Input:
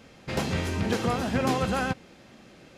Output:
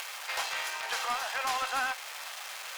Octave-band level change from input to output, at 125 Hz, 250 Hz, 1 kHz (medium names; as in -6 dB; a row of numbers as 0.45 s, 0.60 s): under -35 dB, -29.0 dB, -1.0 dB